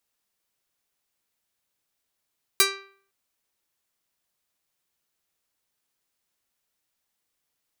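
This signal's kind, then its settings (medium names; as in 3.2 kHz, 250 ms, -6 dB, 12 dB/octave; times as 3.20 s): plucked string G4, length 0.51 s, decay 0.53 s, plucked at 0.44, medium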